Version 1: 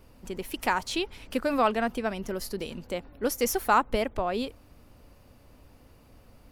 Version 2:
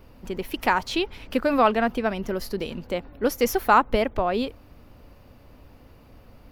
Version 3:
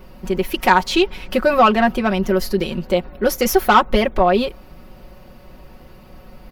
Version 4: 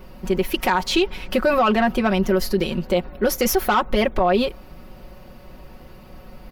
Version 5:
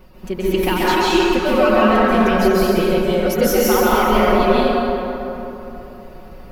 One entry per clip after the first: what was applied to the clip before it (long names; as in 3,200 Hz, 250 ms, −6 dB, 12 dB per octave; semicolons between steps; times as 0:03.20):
parametric band 8,700 Hz −10.5 dB 1.1 octaves; level +5 dB
soft clipping −12 dBFS, distortion −16 dB; comb filter 5.4 ms, depth 77%; level +6.5 dB
brickwall limiter −9.5 dBFS, peak gain reduction 8 dB
reverb reduction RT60 1.2 s; dense smooth reverb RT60 3.3 s, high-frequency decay 0.5×, pre-delay 120 ms, DRR −9 dB; level −4 dB